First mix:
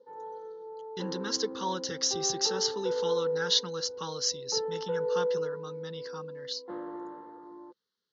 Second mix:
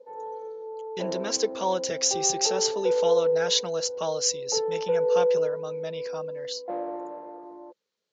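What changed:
background: send −9.0 dB
master: remove phaser with its sweep stopped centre 2,400 Hz, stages 6

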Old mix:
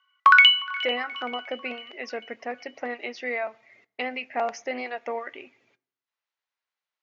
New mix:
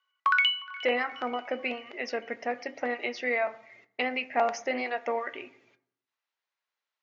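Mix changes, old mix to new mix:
speech: send +10.0 dB
background −9.5 dB

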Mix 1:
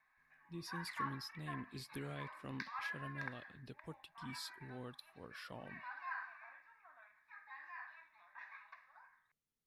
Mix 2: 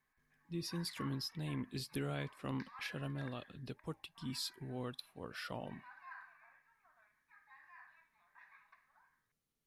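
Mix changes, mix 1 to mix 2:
speech +6.5 dB
background −8.0 dB

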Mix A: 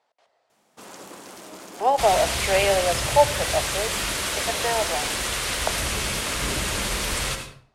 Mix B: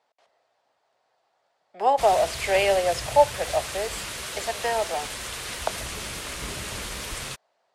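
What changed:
first sound: muted
second sound −4.0 dB
reverb: off

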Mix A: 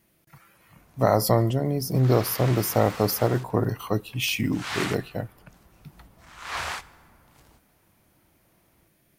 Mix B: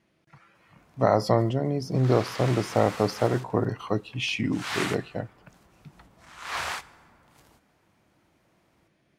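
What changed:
speech: add high-frequency loss of the air 110 metres
master: add low-shelf EQ 70 Hz −11.5 dB

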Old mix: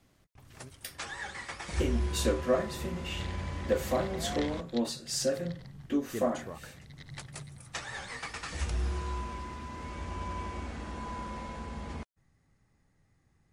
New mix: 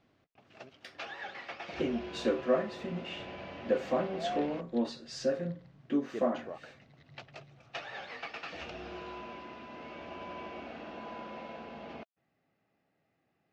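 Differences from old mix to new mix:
first sound: add loudspeaker in its box 270–6,200 Hz, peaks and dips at 670 Hz +8 dB, 1,000 Hz −6 dB, 1,900 Hz −4 dB, 2,700 Hz +7 dB
second sound −10.0 dB
master: add high-frequency loss of the air 190 metres

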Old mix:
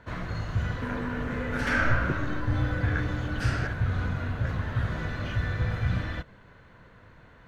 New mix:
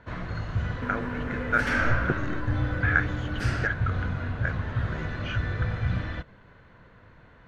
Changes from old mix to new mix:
speech: add parametric band 1,100 Hz +15 dB 2.4 octaves
first sound: add high-frequency loss of the air 74 metres

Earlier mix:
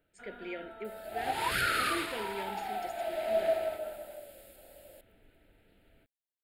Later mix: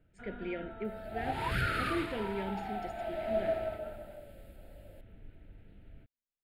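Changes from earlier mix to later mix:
second sound −3.5 dB
master: add bass and treble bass +14 dB, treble −10 dB

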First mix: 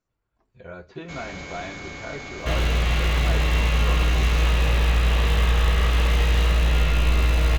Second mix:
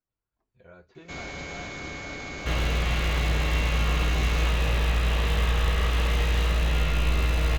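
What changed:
speech −10.5 dB
reverb: off

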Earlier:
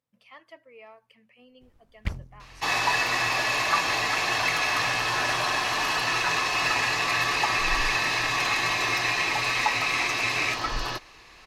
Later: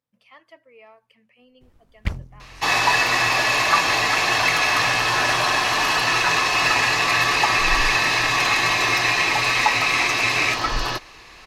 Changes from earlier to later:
first sound +5.0 dB
second sound +6.0 dB

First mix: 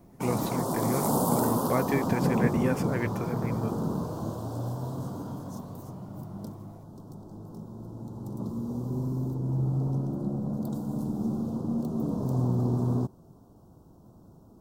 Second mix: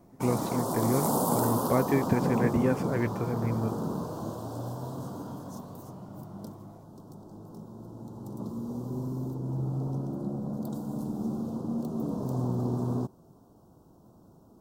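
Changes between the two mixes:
speech: add spectral tilt −2.5 dB per octave
master: add low-shelf EQ 150 Hz −7.5 dB

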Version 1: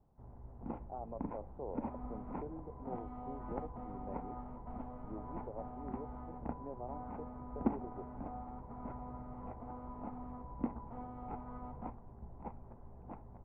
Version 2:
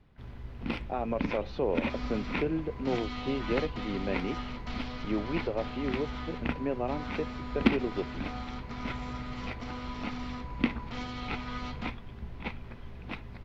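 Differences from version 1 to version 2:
speech +8.0 dB
master: remove transistor ladder low-pass 970 Hz, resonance 50%

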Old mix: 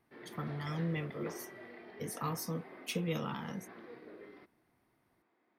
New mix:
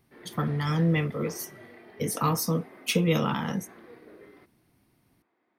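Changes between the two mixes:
speech +10.0 dB
reverb: on, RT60 0.40 s

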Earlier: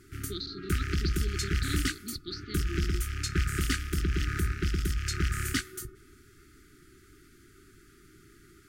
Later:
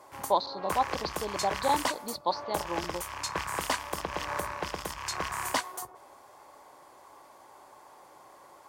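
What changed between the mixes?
background: add high-pass filter 610 Hz 6 dB per octave
master: remove linear-phase brick-wall band-stop 420–1,200 Hz

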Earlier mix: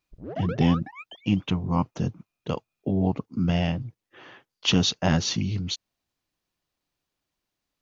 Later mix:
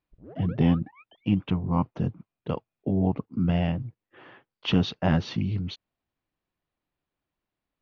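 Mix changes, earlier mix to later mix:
background −8.0 dB
master: add high-frequency loss of the air 330 metres

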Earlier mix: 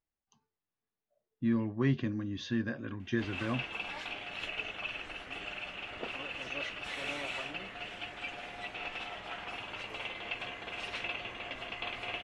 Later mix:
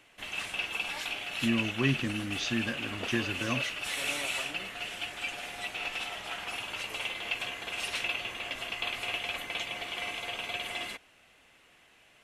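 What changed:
background: entry −3.00 s
master: remove head-to-tape spacing loss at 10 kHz 21 dB

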